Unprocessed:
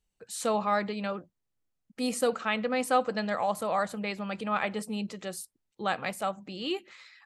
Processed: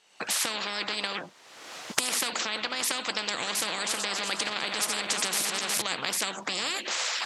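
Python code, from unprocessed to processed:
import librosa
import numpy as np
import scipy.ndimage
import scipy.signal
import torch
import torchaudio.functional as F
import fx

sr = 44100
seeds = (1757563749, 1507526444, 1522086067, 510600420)

y = fx.reverse_delay_fb(x, sr, ms=182, feedback_pct=56, wet_db=-13.0, at=(3.23, 5.82))
y = fx.recorder_agc(y, sr, target_db=-16.5, rise_db_per_s=39.0, max_gain_db=30)
y = fx.bandpass_edges(y, sr, low_hz=610.0, high_hz=5500.0)
y = fx.spectral_comp(y, sr, ratio=10.0)
y = y * 10.0 ** (4.5 / 20.0)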